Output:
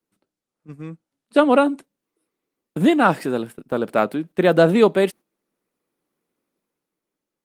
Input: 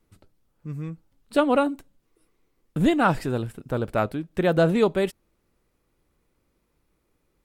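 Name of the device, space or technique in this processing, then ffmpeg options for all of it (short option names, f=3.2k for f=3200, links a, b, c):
video call: -af "highpass=f=180:w=0.5412,highpass=f=180:w=1.3066,dynaudnorm=f=100:g=17:m=7dB,agate=range=-11dB:threshold=-36dB:ratio=16:detection=peak,volume=1dB" -ar 48000 -c:a libopus -b:a 32k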